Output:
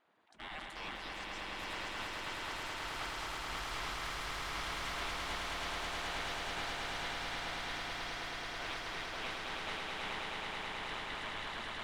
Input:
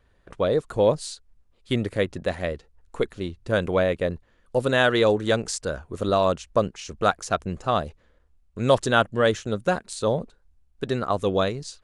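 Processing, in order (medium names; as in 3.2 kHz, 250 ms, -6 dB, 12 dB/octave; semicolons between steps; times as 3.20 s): rattle on loud lows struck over -40 dBFS, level -20 dBFS; bass shelf 130 Hz +4 dB; spectral gate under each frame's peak -25 dB weak; ever faster or slower copies 489 ms, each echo +7 st, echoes 3; in parallel at 0 dB: compression, threshold -43 dBFS, peak gain reduction 14 dB; on the sum: saturation -28 dBFS, distortion -13 dB; low-pass 1.1 kHz 6 dB/octave; on a send: echo with a slow build-up 107 ms, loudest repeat 8, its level -4 dB; on the sum: decay stretcher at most 32 dB/s; trim -2.5 dB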